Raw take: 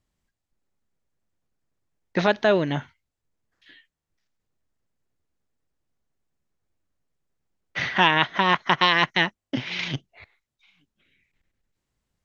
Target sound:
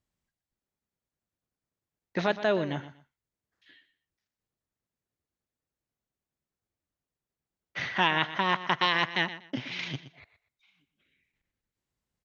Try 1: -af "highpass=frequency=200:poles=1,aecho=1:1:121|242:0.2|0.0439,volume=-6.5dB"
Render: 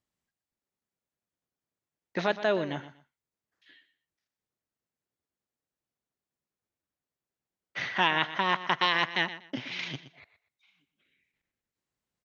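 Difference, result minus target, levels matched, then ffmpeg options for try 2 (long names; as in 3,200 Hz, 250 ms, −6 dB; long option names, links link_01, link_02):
125 Hz band −3.5 dB
-af "highpass=frequency=51:poles=1,aecho=1:1:121|242:0.2|0.0439,volume=-6.5dB"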